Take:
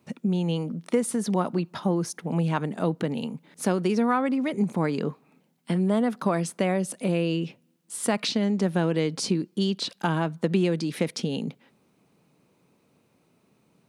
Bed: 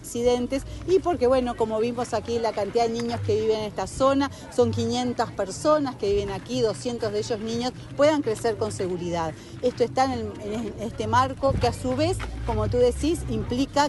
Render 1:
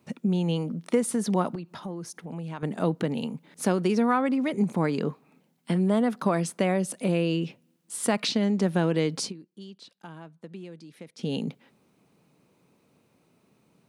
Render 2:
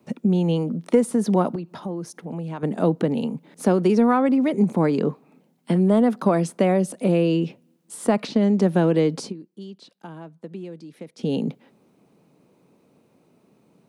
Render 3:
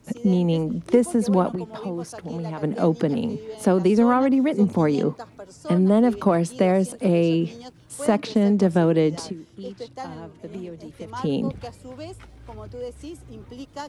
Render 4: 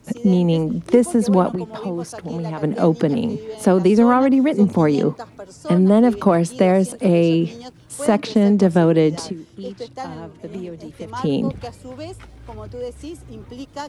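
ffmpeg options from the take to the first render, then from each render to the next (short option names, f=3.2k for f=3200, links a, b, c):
-filter_complex "[0:a]asettb=1/sr,asplit=3[a][b][c];[a]atrim=end=1.554[d];[b]atrim=start=1.55:end=2.63,asetpts=PTS-STARTPTS,afade=t=in:d=0.004:c=qsin,afade=t=out:st=1.076:d=0.004:c=qsin,acompressor=threshold=-41dB:ratio=2:attack=3.2:release=140:knee=1:detection=peak[e];[c]atrim=start=2.626[f];[d][e]acrossfade=d=0.004:c1=hsin:c2=qsin[g];[g][f]acrossfade=d=0.004:c1=qsin:c2=hsin,asplit=3[h][i][j];[h]atrim=end=9.33,asetpts=PTS-STARTPTS,afade=t=out:st=9.21:d=0.12:silence=0.11885[k];[i]atrim=start=9.33:end=11.17,asetpts=PTS-STARTPTS,volume=-18.5dB[l];[j]atrim=start=11.17,asetpts=PTS-STARTPTS,afade=t=in:d=0.12:silence=0.11885[m];[k][l][m]concat=n=3:v=0:a=1"
-filter_complex "[0:a]acrossover=split=160|870|1600[a][b][c][d];[b]acontrast=86[e];[d]alimiter=level_in=2dB:limit=-24dB:level=0:latency=1:release=193,volume=-2dB[f];[a][e][c][f]amix=inputs=4:normalize=0"
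-filter_complex "[1:a]volume=-13.5dB[a];[0:a][a]amix=inputs=2:normalize=0"
-af "volume=4dB,alimiter=limit=-3dB:level=0:latency=1"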